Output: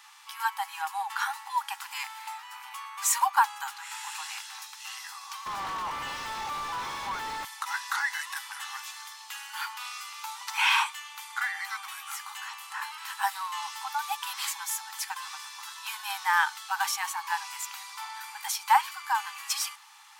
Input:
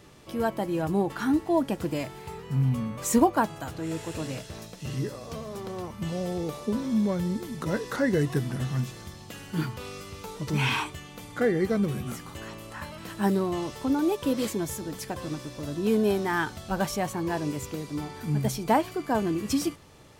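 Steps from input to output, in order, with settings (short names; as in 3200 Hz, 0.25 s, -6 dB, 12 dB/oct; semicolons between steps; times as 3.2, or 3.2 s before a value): brick-wall FIR high-pass 770 Hz; 5.46–7.45 overdrive pedal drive 33 dB, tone 1400 Hz, clips at -29.5 dBFS; gain +5 dB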